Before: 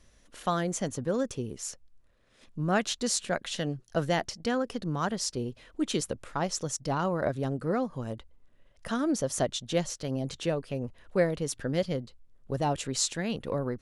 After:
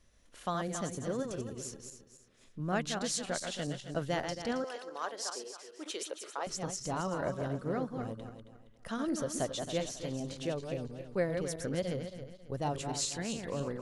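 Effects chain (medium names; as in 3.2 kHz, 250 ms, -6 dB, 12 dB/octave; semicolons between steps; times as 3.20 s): backward echo that repeats 136 ms, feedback 54%, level -5.5 dB; 4.64–6.47 s: high-pass 410 Hz 24 dB/octave; trim -6.5 dB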